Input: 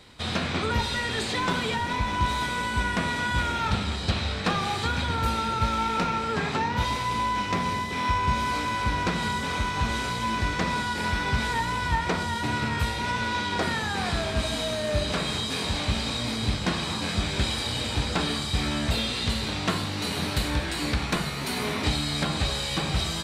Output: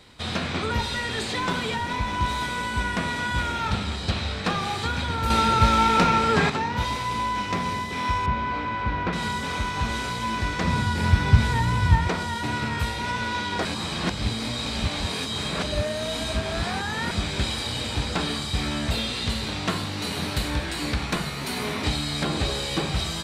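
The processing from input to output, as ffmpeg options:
-filter_complex "[0:a]asettb=1/sr,asplit=3[s0][s1][s2];[s0]atrim=end=5.304[s3];[s1]atrim=start=5.3:end=6.5,asetpts=PTS-STARTPTS,afade=t=in:d=0.004:c=qsin,afade=t=out:st=1.196:d=0.004:c=qsin,acontrast=87[s4];[s2]atrim=start=6.496[s5];[s3][s4]acrossfade=d=0.004:c1=hsin:c2=qsin[s6];[s6][s5]acrossfade=d=0.004:c1=qsin:c2=hsin,asettb=1/sr,asplit=3[s7][s8][s9];[s7]atrim=end=8.264[s10];[s8]atrim=start=8.26:end=9.13,asetpts=PTS-STARTPTS,afade=t=in:d=0.004:c=qsin,afade=t=out:st=0.866:d=0.004:c=qsin,lowpass=2500[s11];[s9]atrim=start=9.126[s12];[s10][s11]acrossfade=d=0.004:c1=hsin:c2=qsin[s13];[s13][s12]acrossfade=d=0.004:c1=qsin:c2=hsin,asettb=1/sr,asplit=3[s14][s15][s16];[s14]atrim=end=10.644[s17];[s15]atrim=start=10.64:end=12.08,asetpts=PTS-STARTPTS,afade=t=in:d=0.004:c=qsin,afade=t=out:st=1.436:d=0.004:c=qsin,equalizer=f=100:w=0.8:g=14.5[s18];[s16]atrim=start=12.076[s19];[s17][s18]acrossfade=d=0.004:c1=hsin:c2=qsin[s20];[s20][s19]acrossfade=d=0.004:c1=qsin:c2=hsin,asettb=1/sr,asplit=3[s21][s22][s23];[s21]atrim=end=22.244[s24];[s22]atrim=start=22.24:end=22.86,asetpts=PTS-STARTPTS,afade=t=in:d=0.004:c=qsin,afade=t=out:st=0.616:d=0.004:c=qsin,equalizer=f=380:w=1.5:g=7.5[s25];[s23]atrim=start=22.856[s26];[s24][s25]acrossfade=d=0.004:c1=hsin:c2=qsin[s27];[s27][s26]acrossfade=d=0.004:c1=qsin:c2=hsin,asplit=3[s28][s29][s30];[s28]atrim=end=13.652[s31];[s29]atrim=start=13.648:end=17.112,asetpts=PTS-STARTPTS,areverse[s32];[s30]atrim=start=17.108[s33];[s31][s32]acrossfade=d=0.004:c1=hsin:c2=hsin[s34];[s34][s33]acrossfade=d=0.004:c1=hsin:c2=hsin"

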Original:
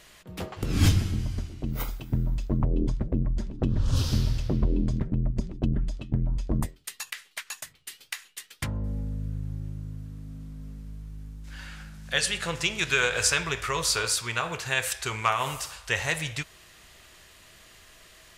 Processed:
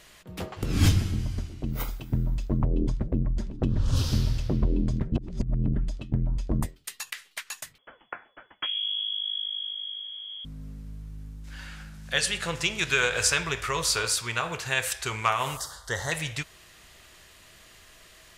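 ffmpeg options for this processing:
-filter_complex "[0:a]asettb=1/sr,asplit=3[s0][s1][s2];[s0]atrim=end=7.784[s3];[s1]atrim=start=7.78:end=10.45,asetpts=PTS-STARTPTS,afade=t=in:d=0.004:c=qsin,afade=t=out:st=2.666:d=0.004:c=qsin,lowpass=f=2900:t=q:w=0.5098,lowpass=f=2900:t=q:w=0.6013,lowpass=f=2900:t=q:w=0.9,lowpass=f=2900:t=q:w=2.563,afreqshift=-3400[s4];[s2]atrim=start=10.446[s5];[s3][s4]acrossfade=d=0.004:c1=hsin:c2=qsin[s6];[s6][s5]acrossfade=d=0.004:c1=qsin:c2=hsin,asettb=1/sr,asplit=3[s7][s8][s9];[s7]atrim=end=15.574[s10];[s8]atrim=start=15.57:end=16.12,asetpts=PTS-STARTPTS,afade=t=in:d=0.004:c=qsin,afade=t=out:st=0.546:d=0.004:c=qsin,asuperstop=centerf=2500:order=4:qfactor=1.6[s11];[s9]atrim=start=16.116[s12];[s10][s11]acrossfade=d=0.004:c1=hsin:c2=qsin[s13];[s13][s12]acrossfade=d=0.004:c1=qsin:c2=hsin,asplit=3[s14][s15][s16];[s14]atrim=end=5.122[s17];[s15]atrim=start=5.118:end=5.682,asetpts=PTS-STARTPTS,areverse[s18];[s16]atrim=start=5.678[s19];[s17][s18]acrossfade=d=0.004:c1=hsin:c2=hsin[s20];[s20][s19]acrossfade=d=0.004:c1=hsin:c2=hsin"

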